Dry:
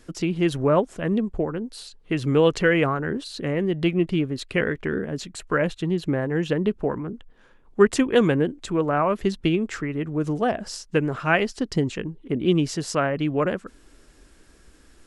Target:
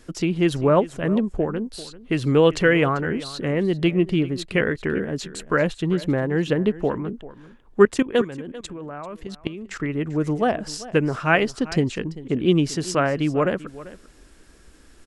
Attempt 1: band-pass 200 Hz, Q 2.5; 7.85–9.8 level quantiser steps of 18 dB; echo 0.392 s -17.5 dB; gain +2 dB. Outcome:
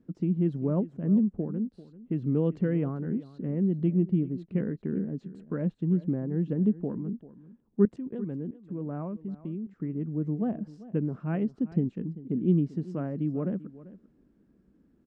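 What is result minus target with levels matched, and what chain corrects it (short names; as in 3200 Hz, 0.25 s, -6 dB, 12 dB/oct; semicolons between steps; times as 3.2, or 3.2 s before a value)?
250 Hz band +3.0 dB
7.85–9.8 level quantiser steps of 18 dB; echo 0.392 s -17.5 dB; gain +2 dB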